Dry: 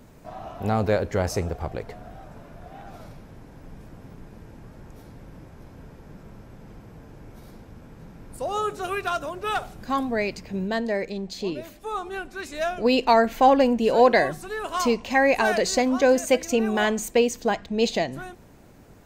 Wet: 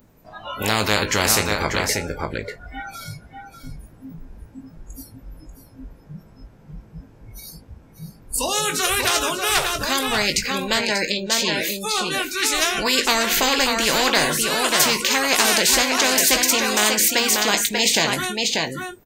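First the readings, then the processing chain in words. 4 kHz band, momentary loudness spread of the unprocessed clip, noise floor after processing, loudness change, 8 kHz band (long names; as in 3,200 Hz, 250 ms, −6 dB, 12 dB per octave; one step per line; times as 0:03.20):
+15.5 dB, 17 LU, −49 dBFS, +5.0 dB, +17.0 dB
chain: double-tracking delay 19 ms −8.5 dB
noise reduction from a noise print of the clip's start 29 dB
single-tap delay 589 ms −11 dB
every bin compressed towards the loudest bin 4 to 1
level +2.5 dB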